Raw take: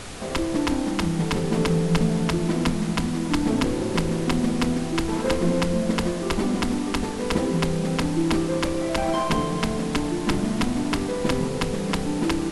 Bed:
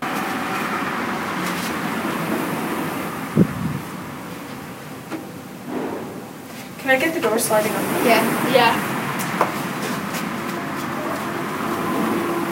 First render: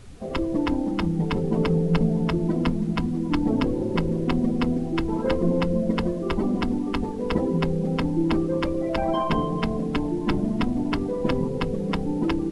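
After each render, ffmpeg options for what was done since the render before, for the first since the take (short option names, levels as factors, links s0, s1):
-af "afftdn=nr=17:nf=-28"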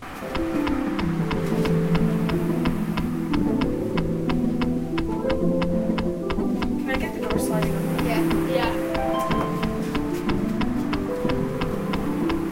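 -filter_complex "[1:a]volume=0.251[s0];[0:a][s0]amix=inputs=2:normalize=0"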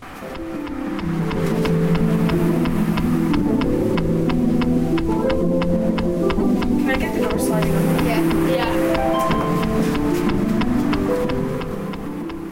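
-af "alimiter=limit=0.1:level=0:latency=1:release=204,dynaudnorm=f=110:g=21:m=3.35"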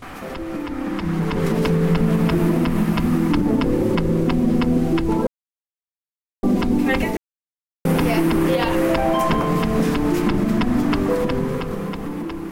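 -filter_complex "[0:a]asplit=5[s0][s1][s2][s3][s4];[s0]atrim=end=5.27,asetpts=PTS-STARTPTS,afade=t=out:st=5.266:d=0.004:c=hsin[s5];[s1]atrim=start=5.27:end=6.43,asetpts=PTS-STARTPTS,volume=0[s6];[s2]atrim=start=6.43:end=7.17,asetpts=PTS-STARTPTS,afade=t=in:d=0.004:c=hsin,afade=t=out:st=0.736:d=0.004:c=hsin[s7];[s3]atrim=start=7.17:end=7.85,asetpts=PTS-STARTPTS,volume=0[s8];[s4]atrim=start=7.85,asetpts=PTS-STARTPTS,afade=t=in:d=0.004:c=hsin[s9];[s5][s6][s7][s8][s9]concat=n=5:v=0:a=1"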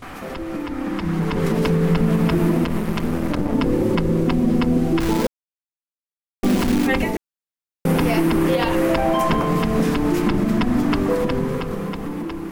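-filter_complex "[0:a]asettb=1/sr,asplit=3[s0][s1][s2];[s0]atrim=end=2.644[s3];[s1]atrim=start=2.64:end=3.55,asetpts=PTS-STARTPTS,afade=t=in:d=0.004:c=qsin,afade=t=out:st=0.906:d=0.004:c=qsin,aeval=exprs='clip(val(0),-1,0.0299)':c=same[s4];[s2]atrim=start=3.546[s5];[s3][s4]acrossfade=d=0.004:c1=hsin:c2=qsin[s6];[s6][s5]acrossfade=d=0.004:c1=qsin:c2=hsin,asettb=1/sr,asplit=3[s7][s8][s9];[s7]atrim=end=5.004[s10];[s8]atrim=start=5:end=6.87,asetpts=PTS-STARTPTS,afade=t=in:d=0.004:c=qsin,afade=t=out:st=1.866:d=0.004:c=qsin,acrusher=bits=5:dc=4:mix=0:aa=0.000001[s11];[s9]atrim=start=6.866[s12];[s10][s11]acrossfade=d=0.004:c1=hsin:c2=qsin[s13];[s13][s12]acrossfade=d=0.004:c1=qsin:c2=hsin"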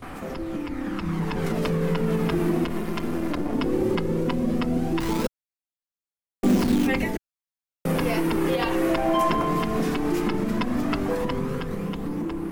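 -filter_complex "[0:a]flanger=delay=0.1:depth=2.8:regen=59:speed=0.16:shape=sinusoidal,acrossover=split=140|7200[s0][s1][s2];[s0]asoftclip=type=tanh:threshold=0.0376[s3];[s3][s1][s2]amix=inputs=3:normalize=0"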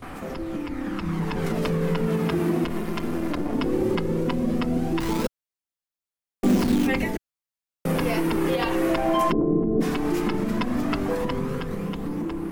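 -filter_complex "[0:a]asettb=1/sr,asplit=3[s0][s1][s2];[s0]atrim=end=2.074[s3];[s1]atrim=start=2.07:end=2.64,asetpts=PTS-STARTPTS,afade=t=in:d=0.004:c=qsin,afade=t=out:st=0.566:d=0.004:c=qsin,highpass=64[s4];[s2]atrim=start=2.636[s5];[s3][s4]acrossfade=d=0.004:c1=hsin:c2=qsin[s6];[s6][s5]acrossfade=d=0.004:c1=qsin:c2=hsin,asplit=3[s7][s8][s9];[s7]afade=t=out:st=9.31:d=0.02[s10];[s8]lowpass=f=380:t=q:w=2.4,afade=t=in:st=9.31:d=0.02,afade=t=out:st=9.8:d=0.02[s11];[s9]afade=t=in:st=9.8:d=0.02[s12];[s10][s11][s12]amix=inputs=3:normalize=0"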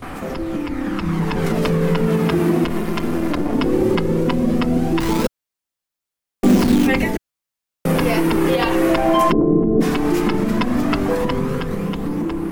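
-af "volume=2.11"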